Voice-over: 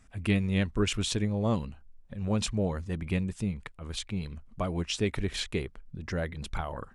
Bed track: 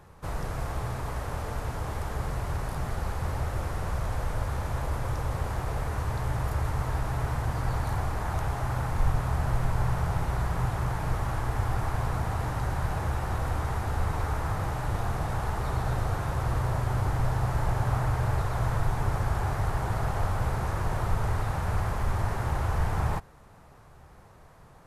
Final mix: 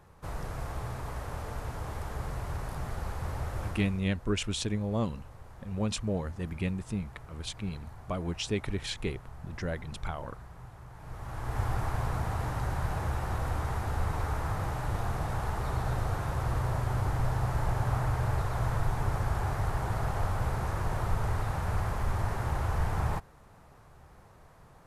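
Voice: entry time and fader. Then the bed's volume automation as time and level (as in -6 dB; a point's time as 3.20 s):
3.50 s, -2.5 dB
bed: 3.67 s -4.5 dB
4.09 s -19.5 dB
10.90 s -19.5 dB
11.60 s -2.5 dB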